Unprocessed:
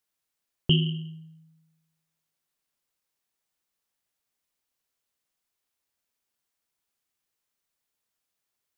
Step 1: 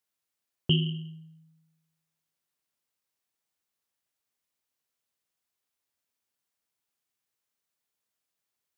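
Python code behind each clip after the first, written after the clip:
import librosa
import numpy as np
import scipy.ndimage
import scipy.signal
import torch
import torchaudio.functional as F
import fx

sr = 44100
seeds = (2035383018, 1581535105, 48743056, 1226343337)

y = scipy.signal.sosfilt(scipy.signal.butter(2, 60.0, 'highpass', fs=sr, output='sos'), x)
y = y * 10.0 ** (-2.5 / 20.0)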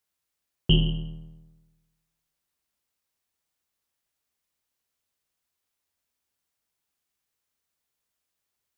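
y = fx.octave_divider(x, sr, octaves=2, level_db=0.0)
y = y * 10.0 ** (2.5 / 20.0)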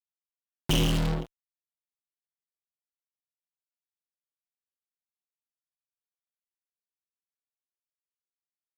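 y = fx.noise_reduce_blind(x, sr, reduce_db=6)
y = fx.fuzz(y, sr, gain_db=49.0, gate_db=-40.0)
y = fx.tremolo_random(y, sr, seeds[0], hz=3.5, depth_pct=55)
y = y * 10.0 ** (-7.5 / 20.0)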